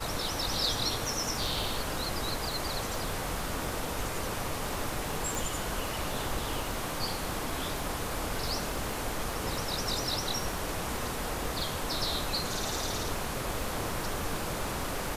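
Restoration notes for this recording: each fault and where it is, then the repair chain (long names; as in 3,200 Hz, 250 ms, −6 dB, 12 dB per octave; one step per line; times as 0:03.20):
surface crackle 39 per second −36 dBFS
0:05.35: click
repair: click removal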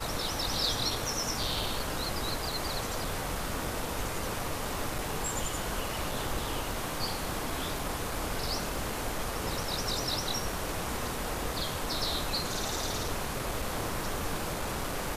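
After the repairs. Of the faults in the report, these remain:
none of them is left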